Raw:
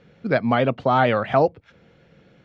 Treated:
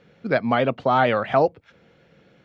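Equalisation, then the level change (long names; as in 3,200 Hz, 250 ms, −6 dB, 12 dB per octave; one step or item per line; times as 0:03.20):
low-shelf EQ 160 Hz −6.5 dB
0.0 dB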